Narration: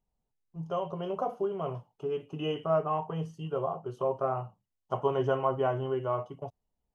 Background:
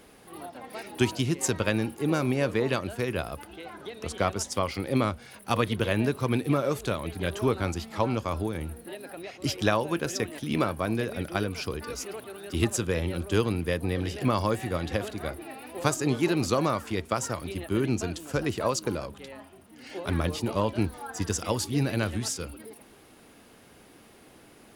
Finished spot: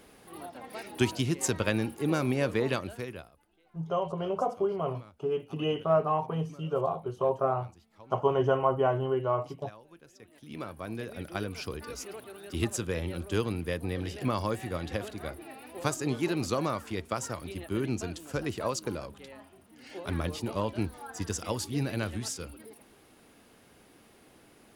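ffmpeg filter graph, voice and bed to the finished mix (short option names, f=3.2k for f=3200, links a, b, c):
-filter_complex "[0:a]adelay=3200,volume=2.5dB[a];[1:a]volume=19.5dB,afade=t=out:st=2.69:d=0.63:silence=0.0630957,afade=t=in:st=10.18:d=1.4:silence=0.0841395[b];[a][b]amix=inputs=2:normalize=0"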